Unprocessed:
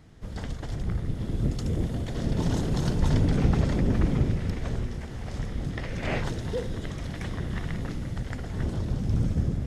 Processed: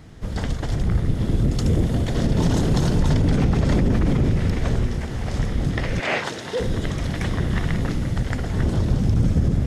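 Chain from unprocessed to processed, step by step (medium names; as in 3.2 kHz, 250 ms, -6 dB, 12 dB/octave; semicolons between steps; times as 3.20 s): 6.00–6.60 s: frequency weighting A; peak limiter -19.5 dBFS, peak gain reduction 8.5 dB; trim +9 dB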